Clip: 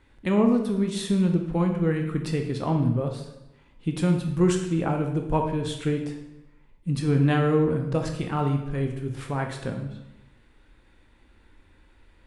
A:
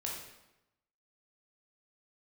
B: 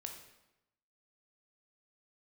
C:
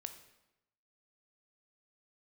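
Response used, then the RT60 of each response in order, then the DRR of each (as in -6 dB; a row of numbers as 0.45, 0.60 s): B; 0.95, 0.95, 0.95 s; -3.0, 3.0, 8.0 dB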